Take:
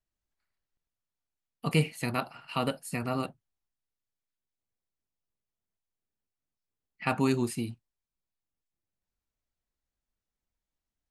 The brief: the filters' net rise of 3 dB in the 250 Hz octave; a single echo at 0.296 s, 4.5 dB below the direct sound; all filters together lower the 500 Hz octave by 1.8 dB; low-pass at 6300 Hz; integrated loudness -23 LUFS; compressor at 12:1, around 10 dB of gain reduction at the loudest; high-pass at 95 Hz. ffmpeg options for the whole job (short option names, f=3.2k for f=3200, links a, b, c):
-af "highpass=95,lowpass=6.3k,equalizer=f=250:t=o:g=4.5,equalizer=f=500:t=o:g=-4,acompressor=threshold=-29dB:ratio=12,aecho=1:1:296:0.596,volume=13dB"